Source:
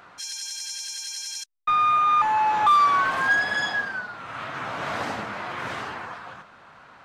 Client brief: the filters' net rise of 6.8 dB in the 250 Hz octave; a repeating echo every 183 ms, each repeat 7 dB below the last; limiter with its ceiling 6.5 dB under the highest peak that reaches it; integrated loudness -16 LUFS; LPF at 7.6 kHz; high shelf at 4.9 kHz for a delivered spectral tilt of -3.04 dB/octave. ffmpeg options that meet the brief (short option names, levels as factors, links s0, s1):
-af "lowpass=7600,equalizer=f=250:t=o:g=8.5,highshelf=f=4900:g=-4.5,alimiter=limit=0.119:level=0:latency=1,aecho=1:1:183|366|549|732|915:0.447|0.201|0.0905|0.0407|0.0183,volume=3.35"